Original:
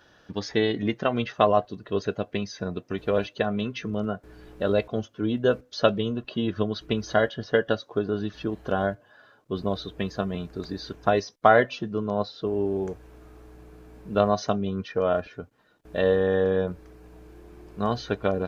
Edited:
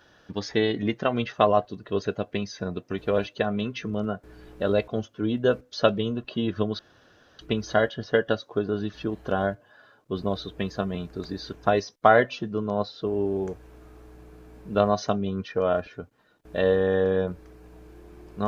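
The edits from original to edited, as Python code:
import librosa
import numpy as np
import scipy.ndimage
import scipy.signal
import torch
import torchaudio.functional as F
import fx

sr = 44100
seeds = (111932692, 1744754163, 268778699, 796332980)

y = fx.edit(x, sr, fx.insert_room_tone(at_s=6.79, length_s=0.6), tone=tone)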